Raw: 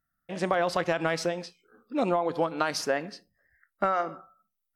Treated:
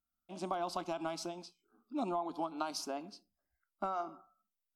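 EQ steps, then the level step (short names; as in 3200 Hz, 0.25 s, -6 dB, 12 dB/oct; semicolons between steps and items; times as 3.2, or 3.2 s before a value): fixed phaser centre 490 Hz, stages 6; -7.0 dB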